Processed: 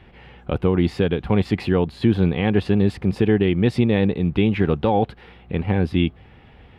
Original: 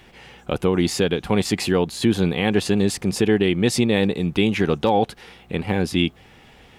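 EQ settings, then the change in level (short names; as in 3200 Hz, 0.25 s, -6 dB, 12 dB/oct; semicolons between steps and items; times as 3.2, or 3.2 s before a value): air absorption 430 m; bell 72 Hz +8 dB 1.7 oct; high shelf 5300 Hz +11 dB; 0.0 dB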